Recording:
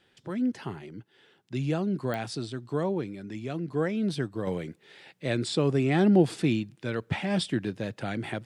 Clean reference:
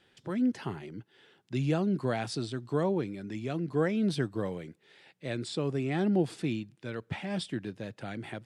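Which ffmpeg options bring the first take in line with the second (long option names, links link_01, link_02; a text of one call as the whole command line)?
ffmpeg -i in.wav -af "adeclick=threshold=4,asetnsamples=nb_out_samples=441:pad=0,asendcmd='4.47 volume volume -6.5dB',volume=0dB" out.wav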